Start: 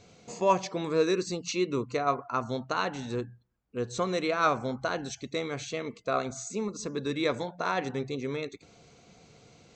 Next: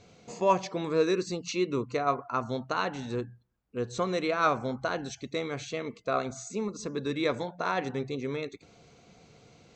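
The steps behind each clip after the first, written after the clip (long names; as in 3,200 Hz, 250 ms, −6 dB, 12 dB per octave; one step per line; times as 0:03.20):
high-shelf EQ 7,300 Hz −7 dB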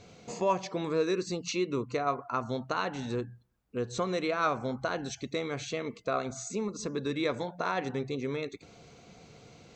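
downward compressor 1.5 to 1, threshold −38 dBFS, peak gain reduction 7.5 dB
level +3 dB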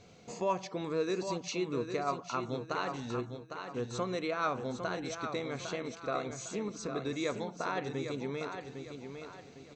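repeating echo 805 ms, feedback 37%, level −7.5 dB
level −4 dB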